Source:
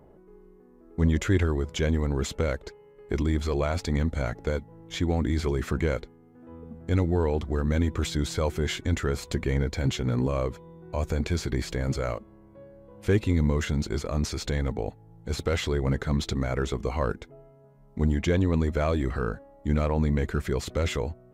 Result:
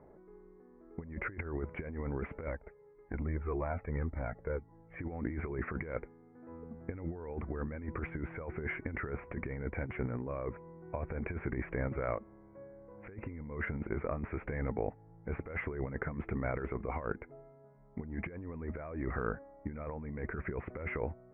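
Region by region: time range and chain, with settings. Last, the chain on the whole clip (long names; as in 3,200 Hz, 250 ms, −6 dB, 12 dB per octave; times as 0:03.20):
0:02.47–0:04.99: high-shelf EQ 2,600 Hz −9.5 dB + flanger whose copies keep moving one way falling 1.8 Hz
whole clip: Butterworth low-pass 2,300 Hz 72 dB per octave; low-shelf EQ 220 Hz −6 dB; compressor whose output falls as the input rises −31 dBFS, ratio −0.5; level −5 dB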